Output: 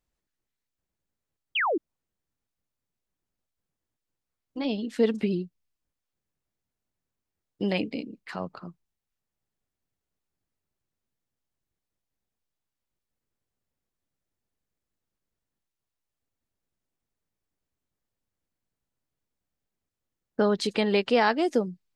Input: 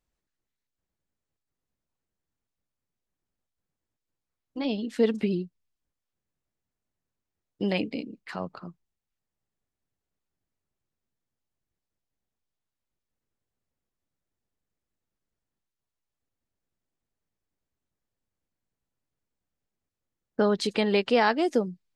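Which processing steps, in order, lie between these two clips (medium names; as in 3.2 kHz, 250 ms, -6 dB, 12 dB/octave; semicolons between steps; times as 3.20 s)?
painted sound fall, 1.55–1.78 s, 280–3400 Hz -25 dBFS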